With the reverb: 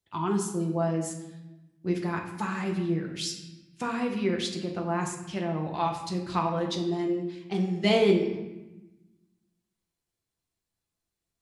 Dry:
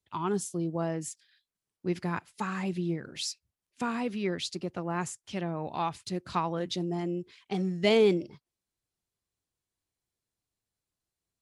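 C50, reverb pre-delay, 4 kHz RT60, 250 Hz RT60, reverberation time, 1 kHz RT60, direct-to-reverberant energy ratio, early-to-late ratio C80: 6.5 dB, 6 ms, 0.80 s, 1.6 s, 1.1 s, 1.0 s, 1.5 dB, 9.0 dB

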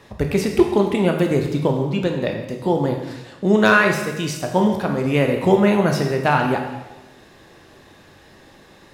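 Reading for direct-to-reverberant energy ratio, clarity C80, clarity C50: 2.5 dB, 7.5 dB, 5.5 dB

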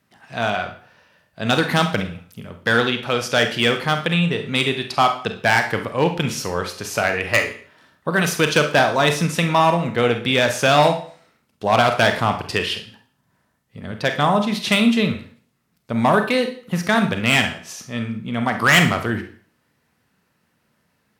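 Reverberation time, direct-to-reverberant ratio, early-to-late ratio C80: 0.45 s, 6.0 dB, 14.5 dB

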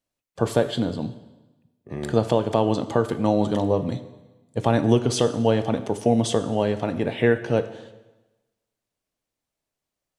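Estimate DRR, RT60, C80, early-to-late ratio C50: 11.0 dB, 1.1 s, 14.5 dB, 13.0 dB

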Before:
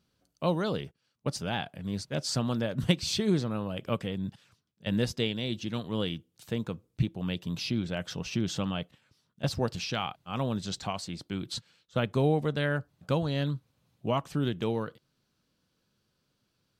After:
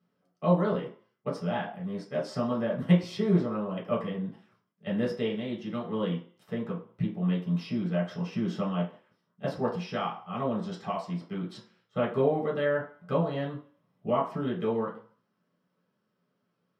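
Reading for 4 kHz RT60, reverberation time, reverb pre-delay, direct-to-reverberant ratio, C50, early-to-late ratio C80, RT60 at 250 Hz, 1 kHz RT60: 0.45 s, 0.45 s, 3 ms, -5.5 dB, 8.5 dB, 13.0 dB, 0.45 s, 0.50 s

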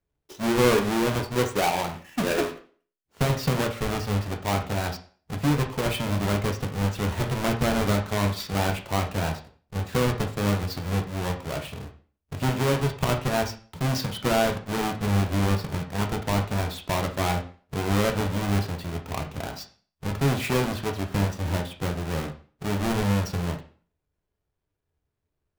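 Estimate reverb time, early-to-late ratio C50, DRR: 0.40 s, 10.5 dB, 3.0 dB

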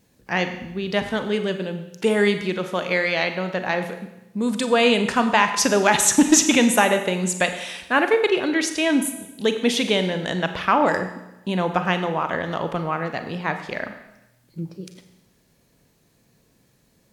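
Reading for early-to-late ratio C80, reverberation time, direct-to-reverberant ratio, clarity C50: 11.0 dB, 0.95 s, 7.5 dB, 9.5 dB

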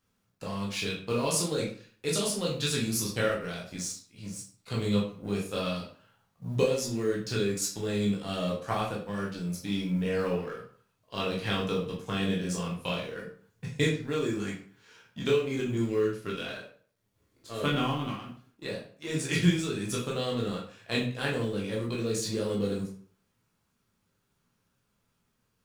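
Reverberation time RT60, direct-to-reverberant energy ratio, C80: 0.50 s, -4.0 dB, 10.5 dB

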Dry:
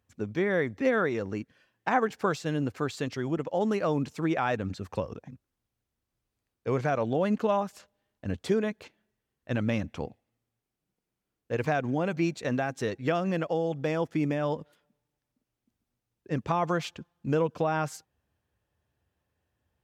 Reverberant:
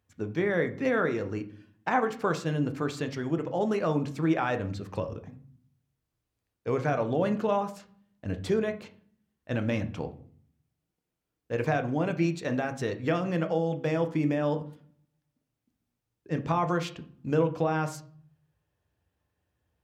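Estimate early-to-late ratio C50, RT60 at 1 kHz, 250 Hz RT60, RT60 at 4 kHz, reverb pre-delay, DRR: 14.0 dB, 0.50 s, 0.80 s, 0.35 s, 6 ms, 7.0 dB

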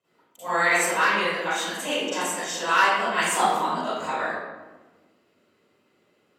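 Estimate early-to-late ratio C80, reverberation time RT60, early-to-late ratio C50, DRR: -1.0 dB, 1.3 s, -6.0 dB, -15.5 dB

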